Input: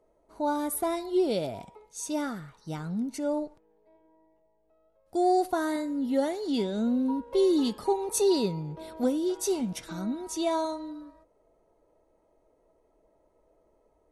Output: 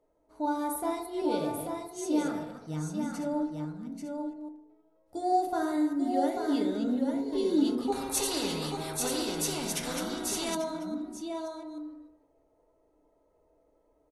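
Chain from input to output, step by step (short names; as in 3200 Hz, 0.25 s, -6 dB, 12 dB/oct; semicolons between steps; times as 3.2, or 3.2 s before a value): reverse delay 0.152 s, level -7.5 dB; echo 0.839 s -5 dB; FDN reverb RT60 0.75 s, low-frequency decay 1×, high-frequency decay 0.3×, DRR 3 dB; 7.92–10.55 spectral compressor 2:1; gain -6 dB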